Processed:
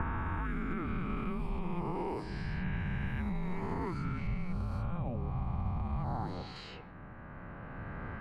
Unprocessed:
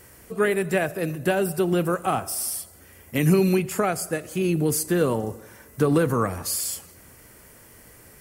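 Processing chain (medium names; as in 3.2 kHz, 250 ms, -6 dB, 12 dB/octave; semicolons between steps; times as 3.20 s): reverse spectral sustain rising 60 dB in 2.75 s; recorder AGC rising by 7.4 dB/s; level-controlled noise filter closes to 2.2 kHz, open at -14 dBFS; high-pass 170 Hz 24 dB/octave; level-controlled noise filter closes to 2.5 kHz, open at -16 dBFS; 4.27–6.56 s: treble shelf 4.1 kHz -10.5 dB; peak limiter -15.5 dBFS, peak gain reduction 8.5 dB; compression 6:1, threshold -30 dBFS, peak gain reduction 10 dB; frequency shift -360 Hz; distance through air 390 m; trim -1.5 dB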